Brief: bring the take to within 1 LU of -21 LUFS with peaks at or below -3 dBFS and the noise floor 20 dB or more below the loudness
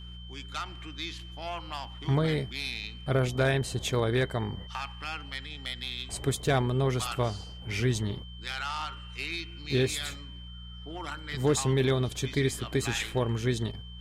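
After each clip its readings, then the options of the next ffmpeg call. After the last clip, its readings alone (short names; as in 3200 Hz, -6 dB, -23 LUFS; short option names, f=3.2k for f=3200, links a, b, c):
hum 60 Hz; harmonics up to 180 Hz; hum level -42 dBFS; steady tone 3100 Hz; tone level -48 dBFS; loudness -30.5 LUFS; peak -15.0 dBFS; loudness target -21.0 LUFS
-> -af "bandreject=f=60:t=h:w=4,bandreject=f=120:t=h:w=4,bandreject=f=180:t=h:w=4"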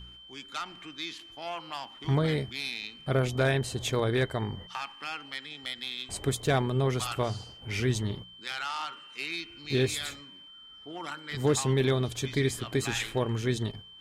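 hum none; steady tone 3100 Hz; tone level -48 dBFS
-> -af "bandreject=f=3.1k:w=30"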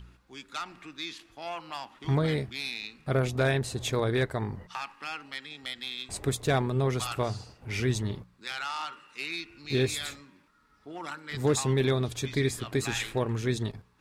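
steady tone none; loudness -31.0 LUFS; peak -14.5 dBFS; loudness target -21.0 LUFS
-> -af "volume=10dB"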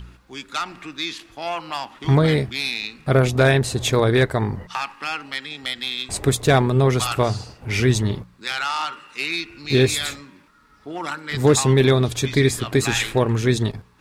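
loudness -21.0 LUFS; peak -4.5 dBFS; noise floor -52 dBFS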